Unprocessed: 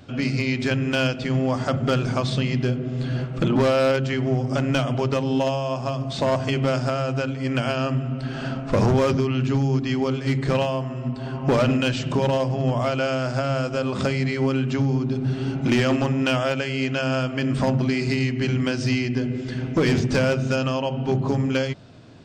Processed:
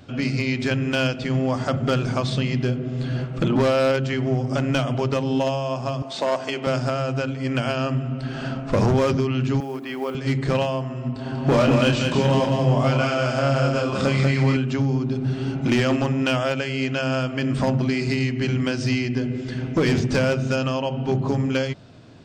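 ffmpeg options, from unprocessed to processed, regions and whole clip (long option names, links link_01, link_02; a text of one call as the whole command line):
ffmpeg -i in.wav -filter_complex "[0:a]asettb=1/sr,asplit=3[link_01][link_02][link_03];[link_01]atrim=end=6.024[link_04];[link_02]atrim=start=6.02:end=6.67,asetpts=PTS-STARTPTS,afade=type=in:duration=0.004:curve=qsin,afade=type=out:start_time=0.646:duration=0.004:curve=qsin,highpass=350,aeval=exprs='val(0)+0.00282*sin(2*PI*890*n/s)':channel_layout=same[link_05];[link_03]atrim=start=6.666[link_06];[link_04][link_05]acrossfade=duration=0.004:curve1=hsin:curve2=qsin[link_07];[link_07][link_06]acrossfade=duration=0.004:curve1=qsin:curve2=hsin,asettb=1/sr,asplit=3[link_08][link_09][link_10];[link_08]atrim=end=9.604[link_11];[link_09]atrim=start=9.6:end=10.15,asetpts=PTS-STARTPTS,afade=type=in:duration=0.004:curve=qsin,afade=type=out:start_time=0.546:duration=0.004:curve=qsin,highpass=390,lowpass=2800,acrusher=bits=7:mode=log:mix=0:aa=0.000001[link_12];[link_10]atrim=start=10.146[link_13];[link_11][link_12]acrossfade=duration=0.004:curve1=hsin:curve2=qsin[link_14];[link_14][link_13]acrossfade=duration=0.004:curve1=qsin:curve2=hsin,asettb=1/sr,asplit=3[link_15][link_16][link_17];[link_15]atrim=end=11.134[link_18];[link_16]atrim=start=11.13:end=14.57,asetpts=PTS-STARTPTS,afade=type=in:duration=0.004:curve=qsin,afade=type=out:start_time=3.436:duration=0.004:curve=qsin,asplit=2[link_19][link_20];[link_20]adelay=29,volume=-4dB[link_21];[link_19][link_21]amix=inputs=2:normalize=0,atrim=end_sample=151704,aecho=1:1:191|382|573:0.631|0.151|0.0363,atrim=end_sample=151704[link_22];[link_17]atrim=start=14.566[link_23];[link_18][link_22]acrossfade=duration=0.004:curve1=hsin:curve2=qsin[link_24];[link_24][link_23]acrossfade=duration=0.004:curve1=qsin:curve2=hsin" out.wav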